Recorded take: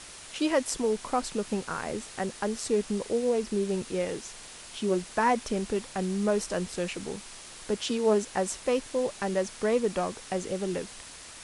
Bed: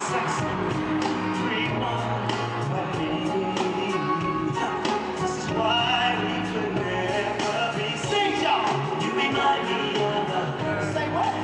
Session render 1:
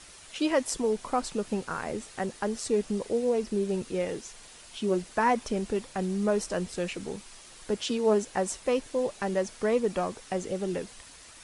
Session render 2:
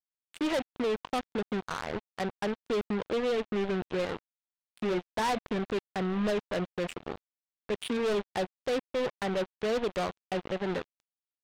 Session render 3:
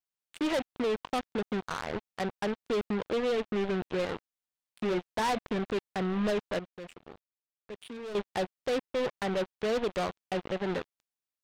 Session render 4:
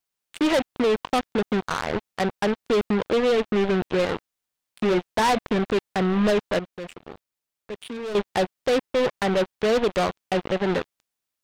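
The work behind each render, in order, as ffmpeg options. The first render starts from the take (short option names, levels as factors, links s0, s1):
-af "afftdn=nr=6:nf=-46"
-af "aresample=8000,asoftclip=type=hard:threshold=0.0398,aresample=44100,acrusher=bits=4:mix=0:aa=0.5"
-filter_complex "[0:a]asplit=3[s0][s1][s2];[s0]atrim=end=6.592[s3];[s1]atrim=start=6.588:end=8.152,asetpts=PTS-STARTPTS,volume=0.266[s4];[s2]atrim=start=8.148[s5];[s3][s4]acrossfade=d=0.004:c1=hsin:c2=hsin[s6];[s6][s5]acrossfade=d=0.004:c1=hsin:c2=hsin"
-af "volume=2.66"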